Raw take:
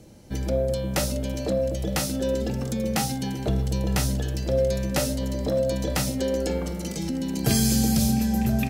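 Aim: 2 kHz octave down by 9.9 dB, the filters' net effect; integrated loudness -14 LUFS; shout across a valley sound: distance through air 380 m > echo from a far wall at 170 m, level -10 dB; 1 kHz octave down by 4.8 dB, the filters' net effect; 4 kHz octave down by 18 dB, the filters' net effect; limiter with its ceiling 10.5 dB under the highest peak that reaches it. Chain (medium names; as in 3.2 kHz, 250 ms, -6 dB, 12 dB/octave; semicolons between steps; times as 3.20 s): peaking EQ 1 kHz -3.5 dB; peaking EQ 2 kHz -5 dB; peaking EQ 4 kHz -6.5 dB; peak limiter -20 dBFS; distance through air 380 m; echo from a far wall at 170 m, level -10 dB; trim +15.5 dB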